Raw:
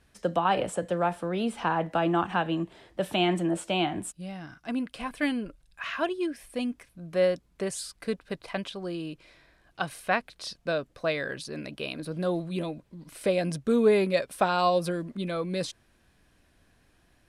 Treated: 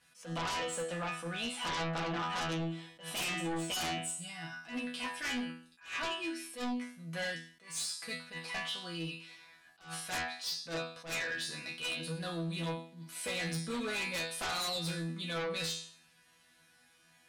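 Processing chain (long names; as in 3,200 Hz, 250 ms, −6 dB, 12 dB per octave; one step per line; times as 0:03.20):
high-pass filter 140 Hz 12 dB per octave
parametric band 350 Hz −14.5 dB 2.7 octaves
resonators tuned to a chord E3 fifth, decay 0.49 s
treble cut that deepens with the level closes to 780 Hz, closed at −38 dBFS
in parallel at −7 dB: sine wavefolder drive 17 dB, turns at −34.5 dBFS
on the sum: level that may rise only so fast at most 160 dB per second
level +7 dB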